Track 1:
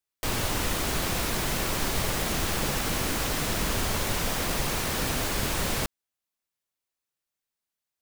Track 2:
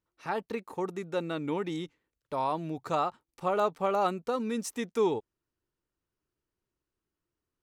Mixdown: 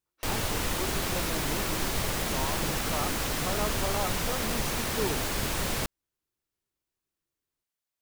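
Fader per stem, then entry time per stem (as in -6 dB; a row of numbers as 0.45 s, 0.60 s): -2.0 dB, -6.5 dB; 0.00 s, 0.00 s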